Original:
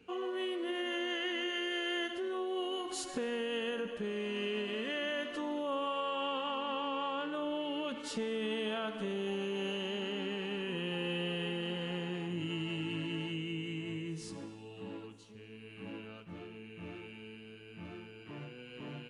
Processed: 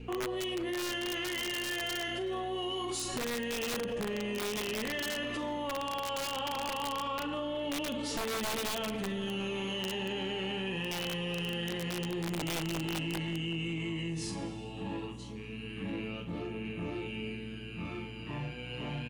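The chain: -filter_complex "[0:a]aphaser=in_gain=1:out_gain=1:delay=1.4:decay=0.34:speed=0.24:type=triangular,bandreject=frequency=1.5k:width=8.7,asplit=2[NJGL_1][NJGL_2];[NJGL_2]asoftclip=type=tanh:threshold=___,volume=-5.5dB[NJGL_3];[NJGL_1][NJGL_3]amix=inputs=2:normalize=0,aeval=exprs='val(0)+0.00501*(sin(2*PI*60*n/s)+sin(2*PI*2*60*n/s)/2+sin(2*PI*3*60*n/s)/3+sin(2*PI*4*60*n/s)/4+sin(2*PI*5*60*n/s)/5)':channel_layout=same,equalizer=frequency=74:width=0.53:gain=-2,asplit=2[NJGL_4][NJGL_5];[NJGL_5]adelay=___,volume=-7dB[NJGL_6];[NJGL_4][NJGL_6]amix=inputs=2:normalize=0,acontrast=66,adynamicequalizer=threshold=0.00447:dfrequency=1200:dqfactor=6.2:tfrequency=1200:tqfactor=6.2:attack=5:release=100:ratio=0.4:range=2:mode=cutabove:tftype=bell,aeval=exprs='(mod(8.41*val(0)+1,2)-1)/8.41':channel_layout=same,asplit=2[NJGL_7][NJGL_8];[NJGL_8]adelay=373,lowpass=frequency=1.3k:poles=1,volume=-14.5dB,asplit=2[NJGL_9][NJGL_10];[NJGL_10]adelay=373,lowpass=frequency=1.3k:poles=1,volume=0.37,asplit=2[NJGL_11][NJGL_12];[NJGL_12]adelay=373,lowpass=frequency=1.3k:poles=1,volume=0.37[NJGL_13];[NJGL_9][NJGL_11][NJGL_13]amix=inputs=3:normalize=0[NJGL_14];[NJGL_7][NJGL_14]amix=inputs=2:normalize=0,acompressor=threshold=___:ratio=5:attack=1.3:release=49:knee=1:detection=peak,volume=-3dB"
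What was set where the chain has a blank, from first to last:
-32dB, 42, -29dB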